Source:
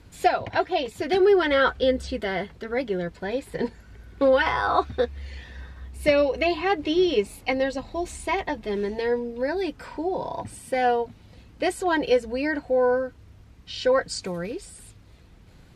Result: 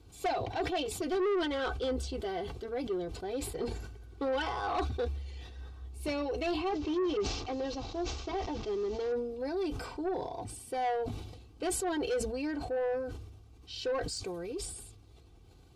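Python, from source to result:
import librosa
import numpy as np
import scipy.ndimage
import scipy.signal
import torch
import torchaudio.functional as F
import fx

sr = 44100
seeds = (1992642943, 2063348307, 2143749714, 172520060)

y = fx.delta_mod(x, sr, bps=32000, step_db=-39.0, at=(6.69, 9.12))
y = scipy.signal.sosfilt(scipy.signal.butter(2, 42.0, 'highpass', fs=sr, output='sos'), y)
y = fx.peak_eq(y, sr, hz=1800.0, db=-13.5, octaves=0.57)
y = y + 0.6 * np.pad(y, (int(2.6 * sr / 1000.0), 0))[:len(y)]
y = 10.0 ** (-19.5 / 20.0) * np.tanh(y / 10.0 ** (-19.5 / 20.0))
y = fx.sustainer(y, sr, db_per_s=48.0)
y = y * librosa.db_to_amplitude(-7.5)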